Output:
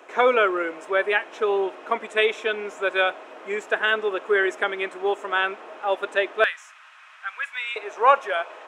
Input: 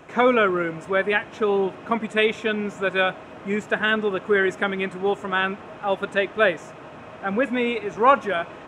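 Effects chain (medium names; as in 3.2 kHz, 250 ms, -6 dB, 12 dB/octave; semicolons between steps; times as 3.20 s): high-pass 350 Hz 24 dB/octave, from 6.44 s 1.3 kHz, from 7.76 s 470 Hz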